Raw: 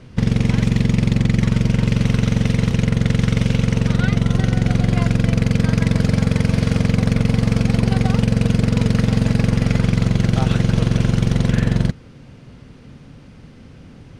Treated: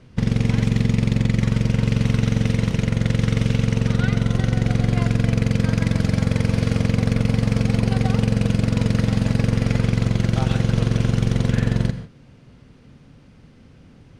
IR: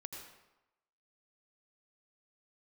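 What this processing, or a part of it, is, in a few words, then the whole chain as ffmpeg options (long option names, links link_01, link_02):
keyed gated reverb: -filter_complex "[0:a]asplit=3[link_01][link_02][link_03];[1:a]atrim=start_sample=2205[link_04];[link_02][link_04]afir=irnorm=-1:irlink=0[link_05];[link_03]apad=whole_len=625873[link_06];[link_05][link_06]sidechaingate=range=-33dB:threshold=-33dB:ratio=16:detection=peak,volume=-0.5dB[link_07];[link_01][link_07]amix=inputs=2:normalize=0,volume=-6.5dB"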